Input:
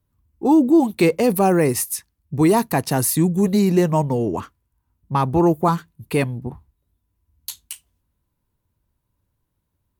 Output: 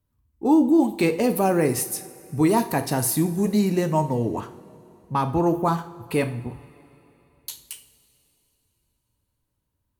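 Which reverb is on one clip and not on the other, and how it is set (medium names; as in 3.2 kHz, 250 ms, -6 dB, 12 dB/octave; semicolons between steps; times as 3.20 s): two-slope reverb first 0.47 s, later 3.3 s, from -18 dB, DRR 7 dB; trim -4 dB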